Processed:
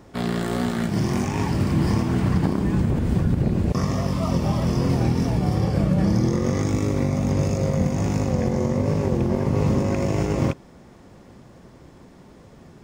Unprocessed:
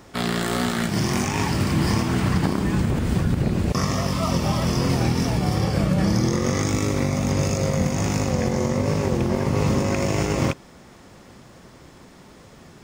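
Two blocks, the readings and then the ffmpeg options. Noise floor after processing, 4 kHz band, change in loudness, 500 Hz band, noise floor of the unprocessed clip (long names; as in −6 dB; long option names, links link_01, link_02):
−48 dBFS, −7.5 dB, 0.0 dB, −0.5 dB, −48 dBFS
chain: -af "tiltshelf=frequency=1100:gain=4.5,bandreject=frequency=1300:width=25,volume=-3.5dB"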